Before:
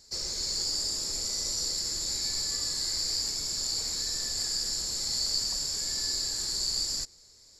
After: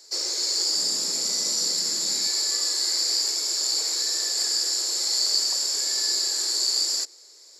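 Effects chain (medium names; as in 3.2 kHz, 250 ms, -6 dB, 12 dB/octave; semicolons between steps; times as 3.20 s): steep high-pass 290 Hz 96 dB/octave, from 0.76 s 160 Hz, from 2.26 s 310 Hz; trim +6.5 dB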